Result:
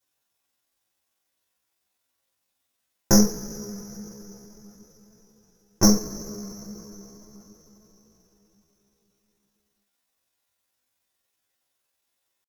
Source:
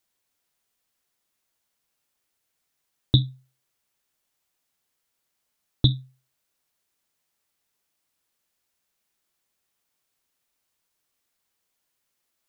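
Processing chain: Chebyshev shaper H 3 -42 dB, 5 -30 dB, 6 -10 dB, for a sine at -4 dBFS; two-slope reverb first 0.36 s, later 4.7 s, from -22 dB, DRR -10 dB; pitch shift +8 st; trim -8.5 dB

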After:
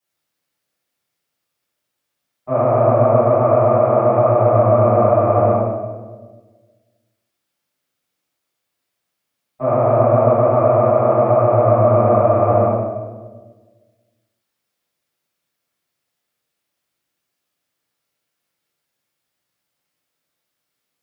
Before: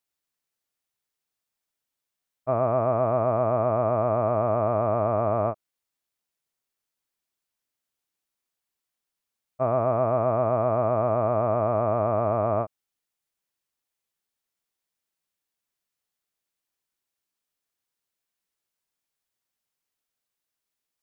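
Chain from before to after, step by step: high-pass 88 Hz; in parallel at -0.5 dB: peak limiter -19.5 dBFS, peak gain reduction 7.5 dB; on the sum: reverberation RT60 1.4 s, pre-delay 4 ms, DRR -15.5 dB; trim -14.5 dB

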